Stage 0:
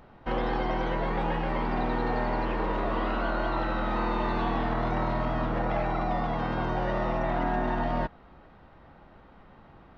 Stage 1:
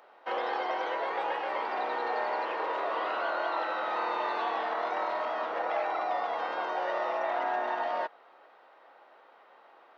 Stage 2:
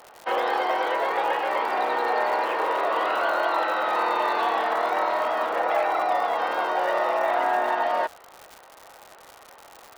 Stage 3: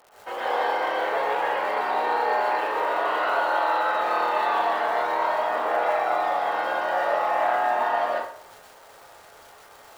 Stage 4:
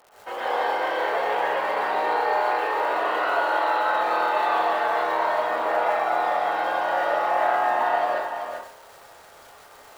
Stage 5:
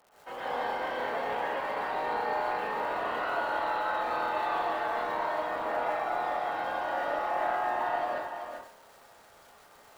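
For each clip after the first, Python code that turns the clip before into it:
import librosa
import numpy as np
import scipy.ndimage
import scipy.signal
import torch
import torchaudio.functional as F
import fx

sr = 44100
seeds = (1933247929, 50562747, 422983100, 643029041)

y1 = scipy.signal.sosfilt(scipy.signal.butter(4, 460.0, 'highpass', fs=sr, output='sos'), x)
y2 = fx.dmg_crackle(y1, sr, seeds[0], per_s=170.0, level_db=-40.0)
y2 = F.gain(torch.from_numpy(y2), 7.5).numpy()
y3 = fx.rev_plate(y2, sr, seeds[1], rt60_s=0.6, hf_ratio=0.75, predelay_ms=110, drr_db=-7.0)
y3 = F.gain(torch.from_numpy(y3), -8.0).numpy()
y4 = y3 + 10.0 ** (-7.0 / 20.0) * np.pad(y3, (int(389 * sr / 1000.0), 0))[:len(y3)]
y5 = fx.octave_divider(y4, sr, octaves=1, level_db=-4.0)
y5 = F.gain(torch.from_numpy(y5), -8.0).numpy()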